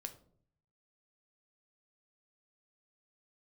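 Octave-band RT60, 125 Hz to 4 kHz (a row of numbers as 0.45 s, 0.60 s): 1.0 s, 0.75 s, 0.65 s, 0.50 s, 0.35 s, 0.30 s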